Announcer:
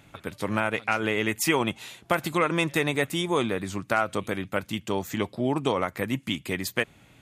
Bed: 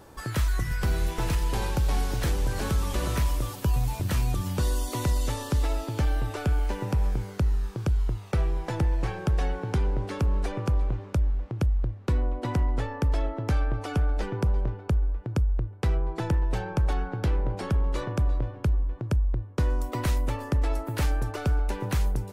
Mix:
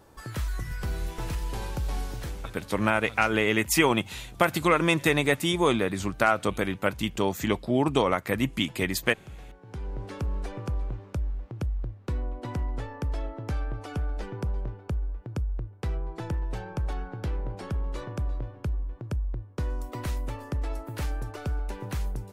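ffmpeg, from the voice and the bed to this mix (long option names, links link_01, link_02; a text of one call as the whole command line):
ffmpeg -i stem1.wav -i stem2.wav -filter_complex "[0:a]adelay=2300,volume=2dB[link_01];[1:a]volume=8.5dB,afade=type=out:start_time=2.02:duration=0.59:silence=0.199526,afade=type=in:start_time=9.61:duration=0.47:silence=0.199526[link_02];[link_01][link_02]amix=inputs=2:normalize=0" out.wav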